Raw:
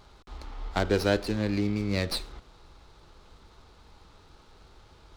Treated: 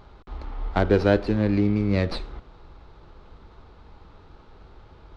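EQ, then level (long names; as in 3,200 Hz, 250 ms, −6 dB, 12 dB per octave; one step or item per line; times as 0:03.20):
head-to-tape spacing loss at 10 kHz 27 dB
+7.0 dB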